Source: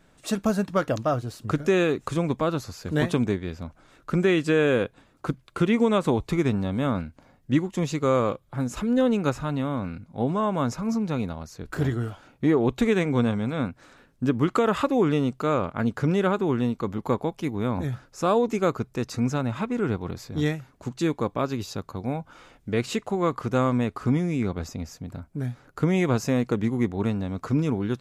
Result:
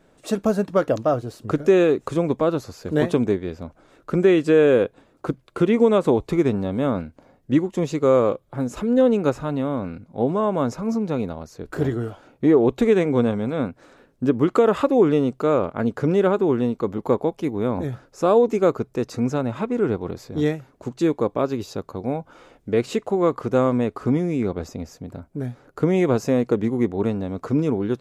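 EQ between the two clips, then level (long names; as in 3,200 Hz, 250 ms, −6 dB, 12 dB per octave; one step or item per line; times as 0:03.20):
parametric band 450 Hz +9 dB 1.8 octaves
−2.0 dB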